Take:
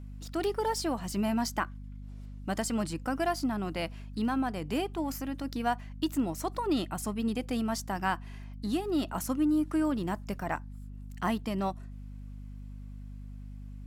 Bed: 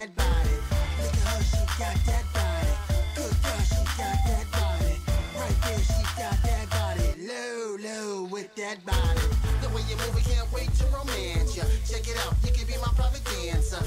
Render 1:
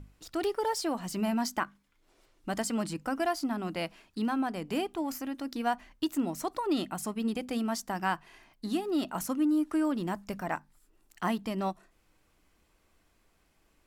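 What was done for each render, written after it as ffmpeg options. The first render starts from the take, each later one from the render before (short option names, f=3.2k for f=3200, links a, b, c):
-af "bandreject=f=50:t=h:w=6,bandreject=f=100:t=h:w=6,bandreject=f=150:t=h:w=6,bandreject=f=200:t=h:w=6,bandreject=f=250:t=h:w=6"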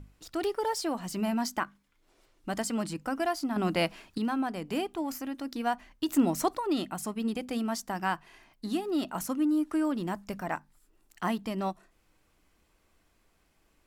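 -filter_complex "[0:a]asettb=1/sr,asplit=3[a][b][c];[a]atrim=end=3.564[d];[b]atrim=start=3.56:end=4.18,asetpts=PTS-STARTPTS,afade=t=in:d=0.004:c=qsin,afade=t=out:st=0.616:d=0.004:c=qsin,acontrast=75[e];[c]atrim=start=4.176[f];[d][e]acrossfade=d=0.004:c1=hsin:c2=qsin[g];[g][f]acrossfade=d=0.004:c1=qsin:c2=hsin,asettb=1/sr,asplit=3[h][i][j];[h]atrim=end=6.084[k];[i]atrim=start=6.08:end=6.55,asetpts=PTS-STARTPTS,afade=t=in:d=0.004:c=qsin,afade=t=out:st=0.466:d=0.004:c=qsin,acontrast=56[l];[j]atrim=start=6.546[m];[k][l]acrossfade=d=0.004:c1=hsin:c2=qsin[n];[n][m]acrossfade=d=0.004:c1=qsin:c2=hsin"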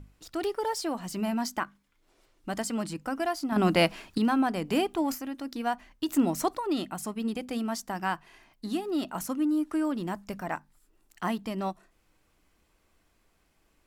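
-filter_complex "[0:a]asettb=1/sr,asplit=3[a][b][c];[a]atrim=end=3.524[d];[b]atrim=start=3.52:end=5.15,asetpts=PTS-STARTPTS,afade=t=in:d=0.004:c=qsin,afade=t=out:st=1.626:d=0.004:c=qsin,acontrast=29[e];[c]atrim=start=5.146[f];[d][e]acrossfade=d=0.004:c1=hsin:c2=qsin[g];[g][f]acrossfade=d=0.004:c1=qsin:c2=hsin"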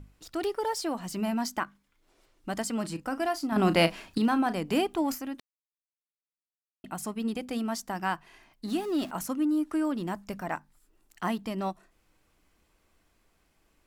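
-filter_complex "[0:a]asettb=1/sr,asplit=3[a][b][c];[a]atrim=end=2.804[d];[b]atrim=start=2.8:end=4.57,asetpts=PTS-STARTPTS,afade=t=in:d=0.004:c=qsin,afade=t=out:st=1.766:d=0.004:c=qsin,asplit=2[e][f];[f]adelay=36,volume=-13dB[g];[e][g]amix=inputs=2:normalize=0,atrim=end_sample=78057[h];[c]atrim=start=4.566[i];[d][h]acrossfade=d=0.004:c1=hsin:c2=qsin[j];[j][i]acrossfade=d=0.004:c1=qsin:c2=hsin,asettb=1/sr,asplit=3[k][l][m];[k]atrim=end=8.684[n];[l]atrim=start=8.68:end=9.11,asetpts=PTS-STARTPTS,afade=t=in:d=0.004:c=qsin,afade=t=out:st=0.426:d=0.004:c=qsin,aeval=exprs='val(0)+0.5*0.00891*sgn(val(0))':c=same[o];[m]atrim=start=9.106[p];[n][o]acrossfade=d=0.004:c1=hsin:c2=qsin[q];[q][p]acrossfade=d=0.004:c1=qsin:c2=hsin,asplit=3[r][s][t];[r]atrim=end=5.4,asetpts=PTS-STARTPTS,afade=t=out:st=5.396:d=0.004:c=hsin[u];[s]atrim=start=5.4:end=6.84,asetpts=PTS-STARTPTS,volume=0[v];[t]atrim=start=6.84,asetpts=PTS-STARTPTS,afade=t=in:d=0.004:c=hsin[w];[u][v][w]concat=n=3:v=0:a=1"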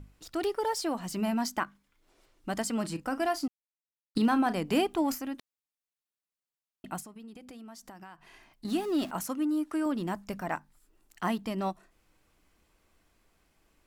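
-filter_complex "[0:a]asettb=1/sr,asplit=3[a][b][c];[a]atrim=end=7.004[d];[b]atrim=start=7:end=8.65,asetpts=PTS-STARTPTS,afade=t=in:d=0.004:c=qsin,afade=t=out:st=1.646:d=0.004:c=qsin,acompressor=threshold=-44dB:ratio=10:attack=3.2:release=140:knee=1:detection=peak[e];[c]atrim=start=8.646[f];[d][e]acrossfade=d=0.004:c1=hsin:c2=qsin[g];[g][f]acrossfade=d=0.004:c1=qsin:c2=hsin,asettb=1/sr,asplit=3[h][i][j];[h]atrim=end=9.204[k];[i]atrim=start=9.2:end=9.86,asetpts=PTS-STARTPTS,afade=t=in:d=0.004:c=qsin,afade=t=out:st=0.656:d=0.004:c=qsin,lowshelf=f=210:g=-8[l];[j]atrim=start=9.856[m];[k][l]acrossfade=d=0.004:c1=hsin:c2=qsin[n];[n][m]acrossfade=d=0.004:c1=qsin:c2=hsin,asplit=3[o][p][q];[o]atrim=end=3.48,asetpts=PTS-STARTPTS,afade=t=out:st=3.476:d=0.004:c=hsin[r];[p]atrim=start=3.48:end=4.15,asetpts=PTS-STARTPTS,volume=0[s];[q]atrim=start=4.15,asetpts=PTS-STARTPTS,afade=t=in:d=0.004:c=hsin[t];[r][s][t]concat=n=3:v=0:a=1"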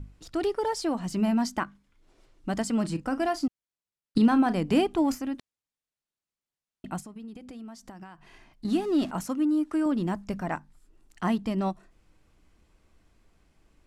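-af "lowpass=9.6k,lowshelf=f=310:g=8.5"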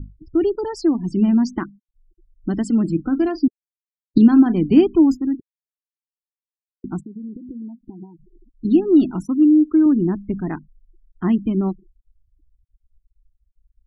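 -af "lowshelf=f=440:t=q:w=3:g=7,afftfilt=real='re*gte(hypot(re,im),0.02)':imag='im*gte(hypot(re,im),0.02)':win_size=1024:overlap=0.75"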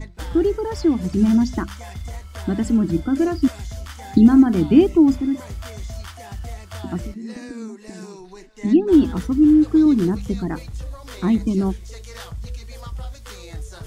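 -filter_complex "[1:a]volume=-7.5dB[a];[0:a][a]amix=inputs=2:normalize=0"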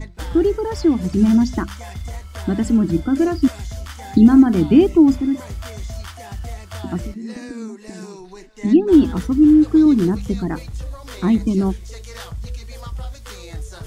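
-af "volume=2dB,alimiter=limit=-2dB:level=0:latency=1"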